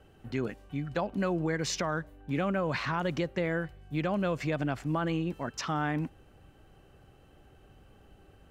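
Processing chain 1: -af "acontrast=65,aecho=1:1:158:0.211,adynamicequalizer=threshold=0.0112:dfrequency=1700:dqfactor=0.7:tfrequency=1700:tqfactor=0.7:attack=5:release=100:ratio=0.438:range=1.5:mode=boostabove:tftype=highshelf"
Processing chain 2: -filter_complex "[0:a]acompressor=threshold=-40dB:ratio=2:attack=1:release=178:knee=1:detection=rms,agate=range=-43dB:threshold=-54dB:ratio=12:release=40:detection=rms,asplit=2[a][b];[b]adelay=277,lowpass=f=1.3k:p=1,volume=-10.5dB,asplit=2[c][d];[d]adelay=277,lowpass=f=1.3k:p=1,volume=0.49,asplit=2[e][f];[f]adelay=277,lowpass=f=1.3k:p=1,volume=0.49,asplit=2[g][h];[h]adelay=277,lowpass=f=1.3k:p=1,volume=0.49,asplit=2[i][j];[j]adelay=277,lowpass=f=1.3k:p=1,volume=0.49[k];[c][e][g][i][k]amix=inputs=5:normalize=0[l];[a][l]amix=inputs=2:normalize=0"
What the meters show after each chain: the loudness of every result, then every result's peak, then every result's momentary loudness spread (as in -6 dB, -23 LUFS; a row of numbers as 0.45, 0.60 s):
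-25.0, -40.5 LUFS; -11.5, -27.0 dBFS; 6, 7 LU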